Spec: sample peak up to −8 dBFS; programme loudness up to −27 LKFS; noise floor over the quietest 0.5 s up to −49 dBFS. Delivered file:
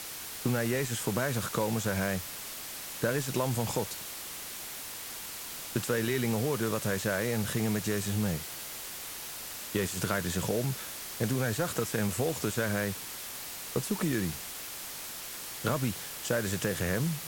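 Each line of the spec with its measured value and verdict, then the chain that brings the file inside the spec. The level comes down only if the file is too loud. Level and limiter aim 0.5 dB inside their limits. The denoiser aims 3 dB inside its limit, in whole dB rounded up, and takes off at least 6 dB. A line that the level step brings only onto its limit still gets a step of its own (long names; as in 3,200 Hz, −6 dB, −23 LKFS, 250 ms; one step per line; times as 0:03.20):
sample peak −15.5 dBFS: in spec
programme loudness −32.0 LKFS: in spec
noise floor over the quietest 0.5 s −41 dBFS: out of spec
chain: broadband denoise 11 dB, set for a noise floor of −41 dBFS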